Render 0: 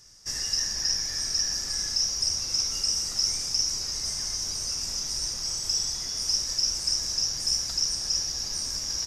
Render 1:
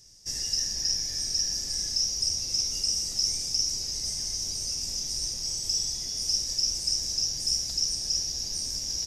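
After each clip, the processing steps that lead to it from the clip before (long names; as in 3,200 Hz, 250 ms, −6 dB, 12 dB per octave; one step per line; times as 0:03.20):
parametric band 1,300 Hz −14 dB 1.3 octaves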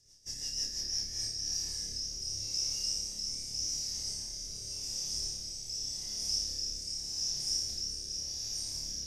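on a send: flutter between parallel walls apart 4.9 metres, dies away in 0.75 s
on the sum: rotating-speaker cabinet horn 6 Hz, later 0.85 Hz, at 0:00.75
level −8 dB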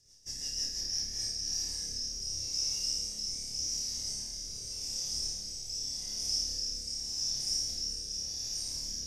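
flutter between parallel walls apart 9.1 metres, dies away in 0.4 s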